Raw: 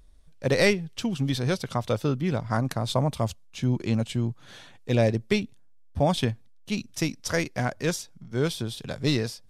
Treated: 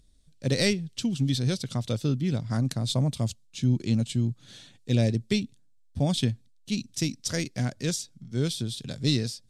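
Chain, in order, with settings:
octave-band graphic EQ 125/250/1,000/4,000/8,000 Hz +8/+7/−6/+8/+10 dB
level −7.5 dB

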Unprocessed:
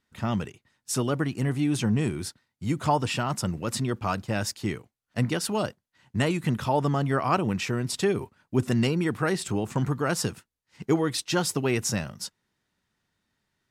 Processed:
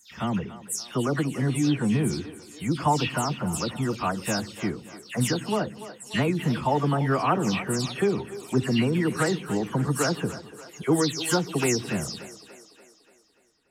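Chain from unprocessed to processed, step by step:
every frequency bin delayed by itself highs early, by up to 197 ms
echo with a time of its own for lows and highs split 310 Hz, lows 100 ms, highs 290 ms, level −14 dB
level +1.5 dB

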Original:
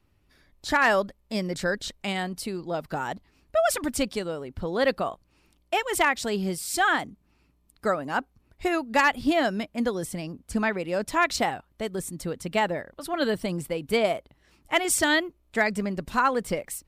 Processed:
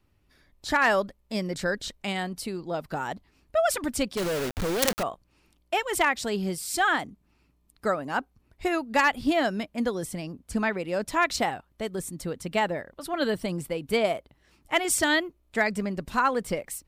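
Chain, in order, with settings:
0:04.17–0:05.03: log-companded quantiser 2 bits
level −1 dB

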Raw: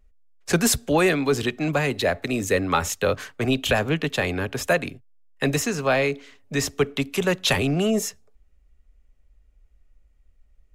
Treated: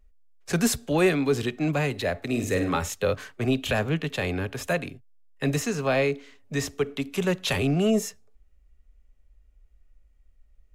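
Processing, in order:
harmonic and percussive parts rebalanced percussive −7 dB
0:02.26–0:02.77: flutter between parallel walls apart 8.6 metres, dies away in 0.44 s

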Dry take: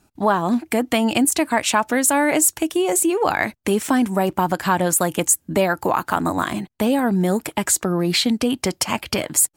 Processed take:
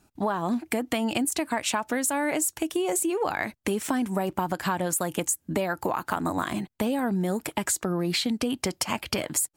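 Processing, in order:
downward compressor, threshold −20 dBFS, peak gain reduction 8.5 dB
level −3 dB

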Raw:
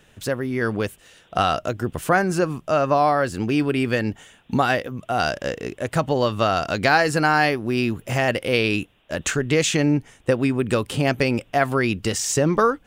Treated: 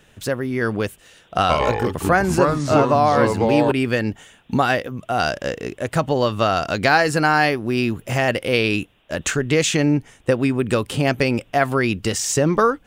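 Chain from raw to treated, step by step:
0:01.39–0:03.72: delay with pitch and tempo change per echo 104 ms, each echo −4 semitones, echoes 2
level +1.5 dB

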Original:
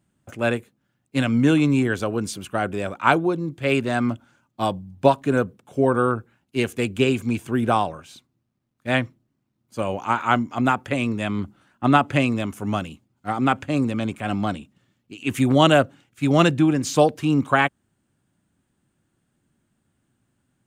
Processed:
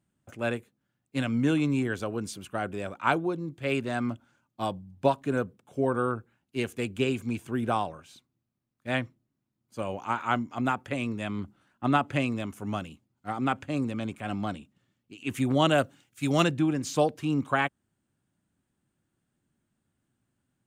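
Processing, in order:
0:15.78–0:16.44: high-shelf EQ 3,600 Hz +10.5 dB
level −7.5 dB

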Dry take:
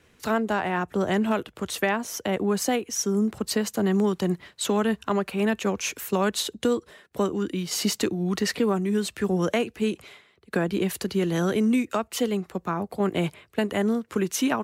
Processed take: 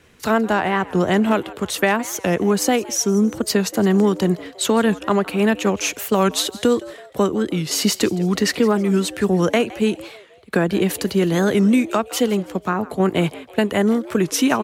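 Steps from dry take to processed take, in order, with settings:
on a send: echo with shifted repeats 164 ms, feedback 44%, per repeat +99 Hz, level −19 dB
on the sum: wow of a warped record 45 rpm, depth 160 cents
level +6.5 dB

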